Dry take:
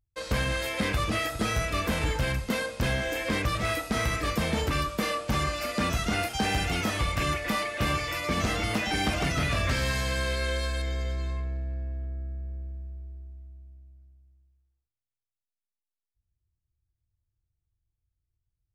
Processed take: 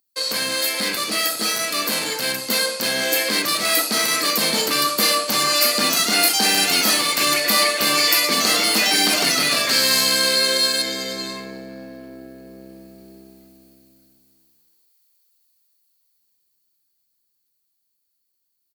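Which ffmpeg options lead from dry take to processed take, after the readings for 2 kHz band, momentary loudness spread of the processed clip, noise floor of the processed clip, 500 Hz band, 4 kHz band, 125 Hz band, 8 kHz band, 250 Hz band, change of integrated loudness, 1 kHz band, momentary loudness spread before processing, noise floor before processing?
+8.5 dB, 7 LU, -73 dBFS, +6.5 dB, +16.5 dB, -10.5 dB, +18.0 dB, +3.5 dB, +11.5 dB, +7.0 dB, 10 LU, under -85 dBFS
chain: -filter_complex "[0:a]asplit=2[a][b];[b]volume=34.5dB,asoftclip=hard,volume=-34.5dB,volume=-9dB[c];[a][c]amix=inputs=2:normalize=0,dynaudnorm=f=510:g=17:m=16dB,equalizer=f=4.4k:w=7.4:g=14.5,areverse,acompressor=threshold=-22dB:ratio=4,areverse,highpass=f=220:w=0.5412,highpass=f=220:w=1.3066,aemphasis=mode=production:type=75fm,asplit=2[d][e];[e]adelay=61,lowpass=f=2k:p=1,volume=-10dB,asplit=2[f][g];[g]adelay=61,lowpass=f=2k:p=1,volume=0.53,asplit=2[h][i];[i]adelay=61,lowpass=f=2k:p=1,volume=0.53,asplit=2[j][k];[k]adelay=61,lowpass=f=2k:p=1,volume=0.53,asplit=2[l][m];[m]adelay=61,lowpass=f=2k:p=1,volume=0.53,asplit=2[n][o];[o]adelay=61,lowpass=f=2k:p=1,volume=0.53[p];[d][f][h][j][l][n][p]amix=inputs=7:normalize=0,volume=2dB"

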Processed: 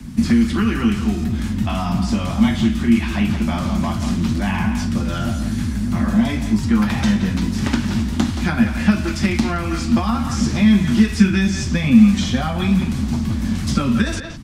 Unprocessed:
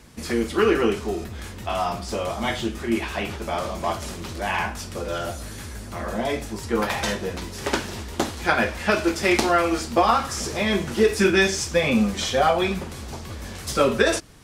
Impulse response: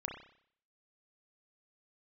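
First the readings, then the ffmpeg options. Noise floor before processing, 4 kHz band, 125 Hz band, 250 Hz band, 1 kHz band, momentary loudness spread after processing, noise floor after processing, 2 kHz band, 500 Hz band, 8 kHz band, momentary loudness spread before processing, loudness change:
-36 dBFS, +0.5 dB, +12.5 dB, +11.0 dB, -3.5 dB, 7 LU, -24 dBFS, -1.0 dB, -8.0 dB, -1.0 dB, 13 LU, +5.0 dB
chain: -filter_complex "[0:a]acrossover=split=280|6000[a][b][c];[b]aecho=1:1:173:0.251[d];[a][d][c]amix=inputs=3:normalize=0,acrossover=split=140|860|7500[e][f][g][h];[e]acompressor=threshold=-40dB:ratio=4[i];[f]acompressor=threshold=-33dB:ratio=4[j];[g]acompressor=threshold=-30dB:ratio=4[k];[h]acompressor=threshold=-53dB:ratio=4[l];[i][j][k][l]amix=inputs=4:normalize=0,lowshelf=f=320:t=q:w=3:g=11,volume=4.5dB"

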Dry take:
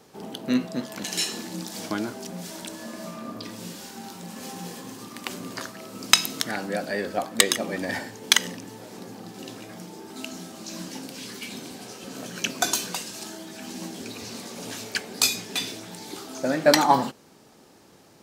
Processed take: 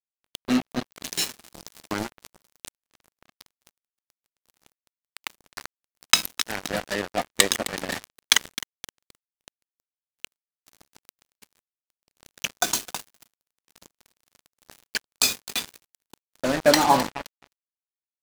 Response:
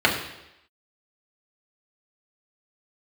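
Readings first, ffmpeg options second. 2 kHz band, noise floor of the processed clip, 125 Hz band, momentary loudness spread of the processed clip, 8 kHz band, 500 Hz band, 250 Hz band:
0.0 dB, under -85 dBFS, -3.0 dB, 22 LU, 0.0 dB, -0.5 dB, -1.5 dB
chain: -af "aecho=1:1:261|522|783|1044|1305:0.188|0.102|0.0549|0.0297|0.016,acrusher=bits=3:mix=0:aa=0.5"

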